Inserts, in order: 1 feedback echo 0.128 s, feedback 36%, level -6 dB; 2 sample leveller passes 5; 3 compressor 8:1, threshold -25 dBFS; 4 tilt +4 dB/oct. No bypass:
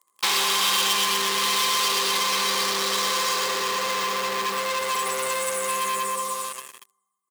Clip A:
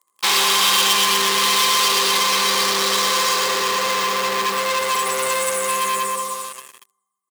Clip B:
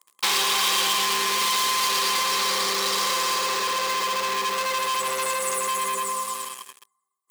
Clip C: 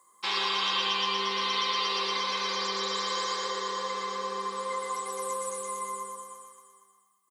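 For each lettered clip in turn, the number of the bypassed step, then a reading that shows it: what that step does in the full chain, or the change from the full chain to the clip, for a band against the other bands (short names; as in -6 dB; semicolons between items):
3, mean gain reduction 5.0 dB; 1, 250 Hz band -2.0 dB; 2, 8 kHz band -7.5 dB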